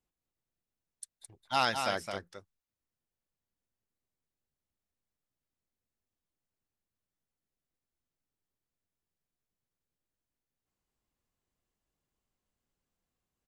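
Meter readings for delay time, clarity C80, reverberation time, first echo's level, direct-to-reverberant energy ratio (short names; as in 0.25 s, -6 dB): 0.215 s, none, none, -6.5 dB, none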